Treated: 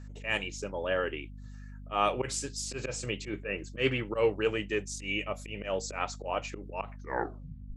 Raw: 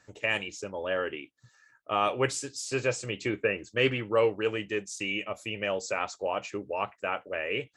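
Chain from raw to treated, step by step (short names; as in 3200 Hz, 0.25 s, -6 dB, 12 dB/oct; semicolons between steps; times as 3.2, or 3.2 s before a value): tape stop at the end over 0.90 s; auto swell 0.113 s; hum 50 Hz, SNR 11 dB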